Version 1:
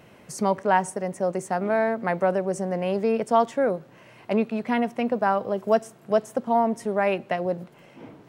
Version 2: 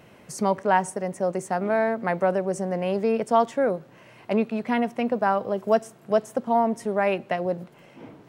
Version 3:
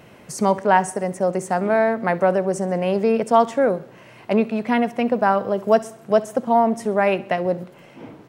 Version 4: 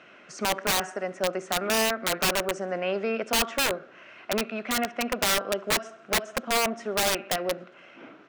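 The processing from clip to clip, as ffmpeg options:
ffmpeg -i in.wav -af anull out.wav
ffmpeg -i in.wav -af "aecho=1:1:66|132|198|264:0.106|0.054|0.0276|0.0141,volume=4.5dB" out.wav
ffmpeg -i in.wav -af "highpass=360,equalizer=frequency=470:width_type=q:width=4:gain=-7,equalizer=frequency=890:width_type=q:width=4:gain=-9,equalizer=frequency=1400:width_type=q:width=4:gain=9,equalizer=frequency=2600:width_type=q:width=4:gain=4,equalizer=frequency=4600:width_type=q:width=4:gain=-5,lowpass=frequency=5700:width=0.5412,lowpass=frequency=5700:width=1.3066,aeval=exprs='(mod(5.62*val(0)+1,2)-1)/5.62':channel_layout=same,volume=-2.5dB" out.wav

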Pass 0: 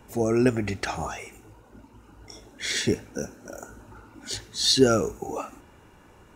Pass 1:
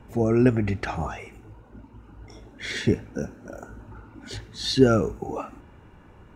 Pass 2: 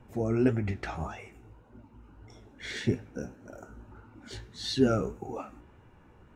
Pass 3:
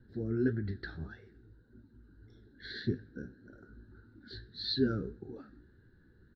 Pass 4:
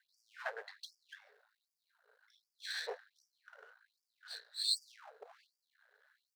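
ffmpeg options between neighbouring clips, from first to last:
ffmpeg -i in.wav -af "bass=frequency=250:gain=6,treble=frequency=4000:gain=-12" out.wav
ffmpeg -i in.wav -af "flanger=delay=7.9:depth=9.2:regen=48:speed=1.7:shape=sinusoidal,volume=-2.5dB" out.wav
ffmpeg -i in.wav -af "firequalizer=gain_entry='entry(390,0);entry(640,-18);entry(1100,-20);entry(1600,7);entry(2400,-26);entry(4100,9);entry(6500,-29)':delay=0.05:min_phase=1,volume=-5dB" out.wav
ffmpeg -i in.wav -af "aeval=exprs='if(lt(val(0),0),0.251*val(0),val(0))':channel_layout=same,afftfilt=real='re*gte(b*sr/1024,390*pow(4700/390,0.5+0.5*sin(2*PI*1.3*pts/sr)))':imag='im*gte(b*sr/1024,390*pow(4700/390,0.5+0.5*sin(2*PI*1.3*pts/sr)))':win_size=1024:overlap=0.75,volume=6.5dB" out.wav

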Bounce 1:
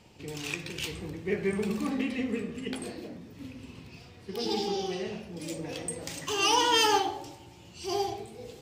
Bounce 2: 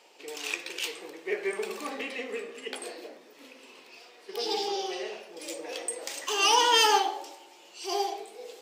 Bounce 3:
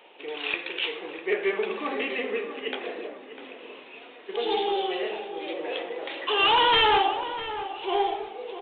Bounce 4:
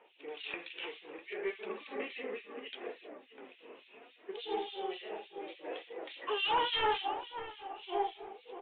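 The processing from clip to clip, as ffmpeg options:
ffmpeg -i in.wav -af "highpass=frequency=410:width=0.5412,highpass=frequency=410:width=1.3066,volume=2.5dB" out.wav
ffmpeg -i in.wav -filter_complex "[0:a]aresample=8000,aeval=exprs='0.282*sin(PI/2*2.24*val(0)/0.282)':channel_layout=same,aresample=44100,asplit=2[link_01][link_02];[link_02]adelay=650,lowpass=frequency=2000:poles=1,volume=-11dB,asplit=2[link_03][link_04];[link_04]adelay=650,lowpass=frequency=2000:poles=1,volume=0.37,asplit=2[link_05][link_06];[link_06]adelay=650,lowpass=frequency=2000:poles=1,volume=0.37,asplit=2[link_07][link_08];[link_08]adelay=650,lowpass=frequency=2000:poles=1,volume=0.37[link_09];[link_01][link_03][link_05][link_07][link_09]amix=inputs=5:normalize=0,volume=-5dB" out.wav
ffmpeg -i in.wav -filter_complex "[0:a]flanger=delay=2:depth=4.5:regen=69:speed=0.68:shape=triangular,acrossover=split=2400[link_01][link_02];[link_01]aeval=exprs='val(0)*(1-1/2+1/2*cos(2*PI*3.5*n/s))':channel_layout=same[link_03];[link_02]aeval=exprs='val(0)*(1-1/2-1/2*cos(2*PI*3.5*n/s))':channel_layout=same[link_04];[link_03][link_04]amix=inputs=2:normalize=0,volume=-2.5dB" out.wav

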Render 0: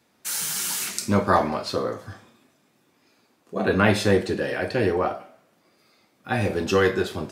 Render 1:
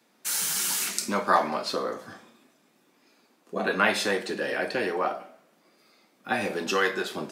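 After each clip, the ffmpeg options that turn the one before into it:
ffmpeg -i in.wav -filter_complex "[0:a]highpass=frequency=170:width=0.5412,highpass=frequency=170:width=1.3066,acrossover=split=670[link_01][link_02];[link_01]acompressor=threshold=-30dB:ratio=6[link_03];[link_03][link_02]amix=inputs=2:normalize=0" out.wav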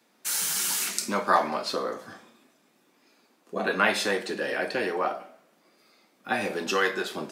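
ffmpeg -i in.wav -af "lowshelf=frequency=140:gain=-4" out.wav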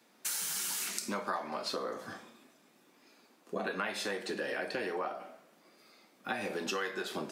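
ffmpeg -i in.wav -af "acompressor=threshold=-33dB:ratio=6" out.wav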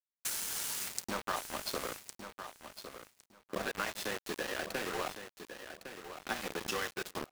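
ffmpeg -i in.wav -filter_complex "[0:a]aeval=exprs='val(0)*gte(abs(val(0)),0.0211)':channel_layout=same,asplit=2[link_01][link_02];[link_02]aecho=0:1:1108|2216:0.316|0.0538[link_03];[link_01][link_03]amix=inputs=2:normalize=0" out.wav

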